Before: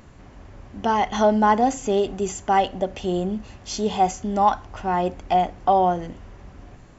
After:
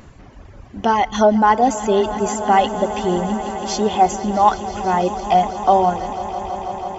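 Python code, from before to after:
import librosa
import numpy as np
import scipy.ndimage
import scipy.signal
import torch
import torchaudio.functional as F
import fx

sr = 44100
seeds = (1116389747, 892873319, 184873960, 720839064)

y = fx.dereverb_blind(x, sr, rt60_s=1.5)
y = fx.echo_swell(y, sr, ms=164, loudest=5, wet_db=-17.0)
y = F.gain(torch.from_numpy(y), 5.0).numpy()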